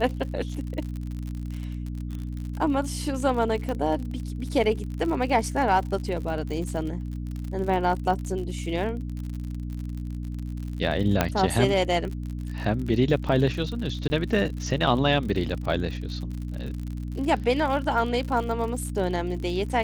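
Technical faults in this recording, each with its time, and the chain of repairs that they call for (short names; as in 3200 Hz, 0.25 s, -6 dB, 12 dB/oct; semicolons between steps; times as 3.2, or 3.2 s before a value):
crackle 56/s -32 dBFS
hum 60 Hz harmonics 5 -32 dBFS
3.69 pop -19 dBFS
11.21 pop -5 dBFS
14.08–14.1 gap 20 ms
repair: de-click; de-hum 60 Hz, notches 5; interpolate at 14.08, 20 ms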